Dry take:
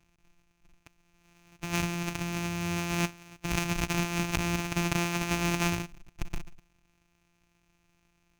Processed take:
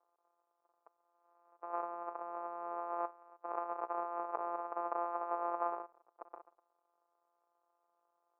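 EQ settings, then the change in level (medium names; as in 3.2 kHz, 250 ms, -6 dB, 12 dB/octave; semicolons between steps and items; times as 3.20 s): elliptic band-pass 450–1200 Hz, stop band 60 dB; distance through air 75 m; +1.5 dB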